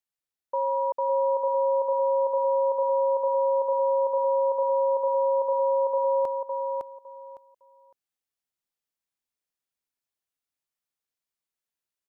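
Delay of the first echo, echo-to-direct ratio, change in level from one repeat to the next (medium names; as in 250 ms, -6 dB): 558 ms, -4.0 dB, -13.5 dB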